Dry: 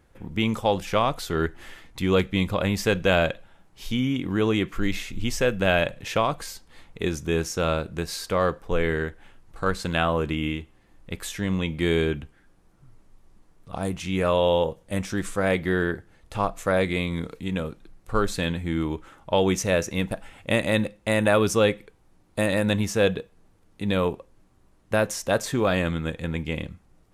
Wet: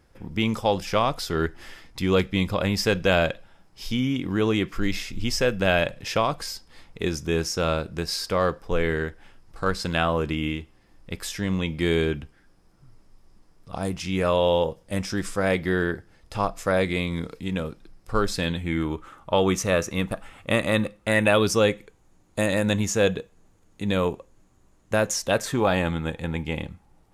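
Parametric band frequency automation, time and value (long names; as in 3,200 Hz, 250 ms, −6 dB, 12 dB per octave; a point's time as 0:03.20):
parametric band +11 dB 0.22 octaves
0:18.43 5,100 Hz
0:18.93 1,200 Hz
0:21.01 1,200 Hz
0:21.63 6,800 Hz
0:25.13 6,800 Hz
0:25.59 840 Hz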